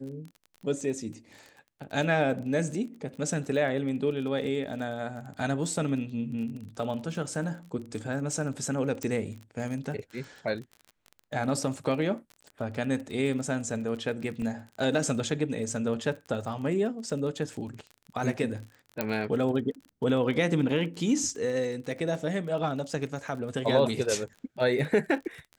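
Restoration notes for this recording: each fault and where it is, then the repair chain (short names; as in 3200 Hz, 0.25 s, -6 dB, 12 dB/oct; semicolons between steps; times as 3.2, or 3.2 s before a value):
crackle 30/s -37 dBFS
9.03 pop -18 dBFS
14.42 gap 3.2 ms
19.01 pop -12 dBFS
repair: de-click; interpolate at 14.42, 3.2 ms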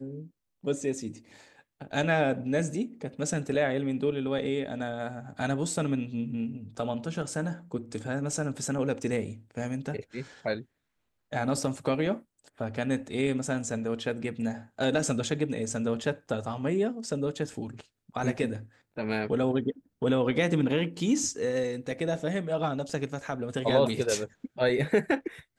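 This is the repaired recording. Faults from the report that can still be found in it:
9.03 pop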